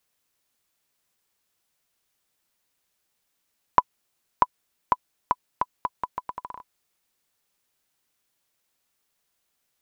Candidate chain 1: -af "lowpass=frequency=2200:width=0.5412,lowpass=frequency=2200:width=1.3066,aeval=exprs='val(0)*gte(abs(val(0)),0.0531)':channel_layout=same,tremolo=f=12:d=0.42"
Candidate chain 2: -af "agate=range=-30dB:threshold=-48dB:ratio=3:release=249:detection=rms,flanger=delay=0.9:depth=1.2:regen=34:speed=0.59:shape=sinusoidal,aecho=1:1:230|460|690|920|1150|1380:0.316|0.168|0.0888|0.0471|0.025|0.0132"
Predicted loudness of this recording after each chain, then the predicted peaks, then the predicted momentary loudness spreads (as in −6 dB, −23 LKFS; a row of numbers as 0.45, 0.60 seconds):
−31.5, −33.0 LKFS; −4.5, −6.5 dBFS; 12, 14 LU